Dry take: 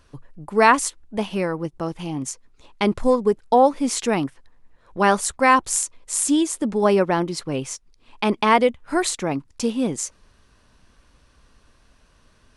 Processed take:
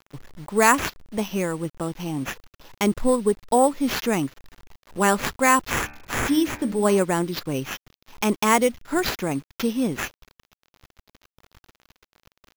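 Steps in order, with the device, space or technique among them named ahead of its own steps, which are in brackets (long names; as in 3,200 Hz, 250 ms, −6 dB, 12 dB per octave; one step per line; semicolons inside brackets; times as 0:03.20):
early 8-bit sampler (sample-rate reduction 8,800 Hz, jitter 0%; bit reduction 8 bits)
0:05.76–0:07.02: hum removal 73.67 Hz, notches 37
dynamic equaliser 740 Hz, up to −4 dB, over −31 dBFS, Q 0.81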